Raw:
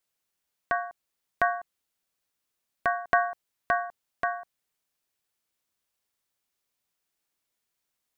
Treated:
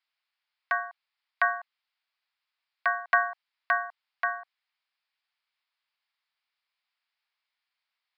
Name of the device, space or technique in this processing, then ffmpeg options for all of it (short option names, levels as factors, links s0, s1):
musical greeting card: -af "aresample=11025,aresample=44100,highpass=f=820:w=0.5412,highpass=f=820:w=1.3066,equalizer=f=2200:t=o:w=0.5:g=4,volume=1.19"